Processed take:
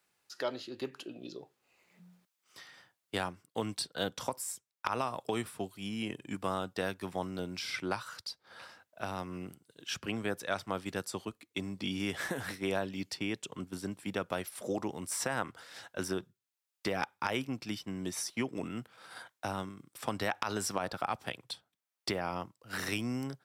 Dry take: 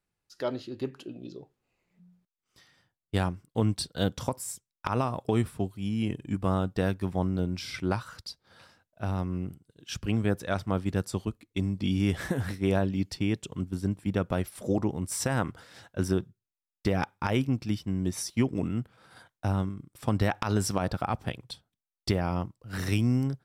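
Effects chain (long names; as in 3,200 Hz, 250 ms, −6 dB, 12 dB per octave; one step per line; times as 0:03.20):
high-pass filter 700 Hz 6 dB per octave
multiband upward and downward compressor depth 40%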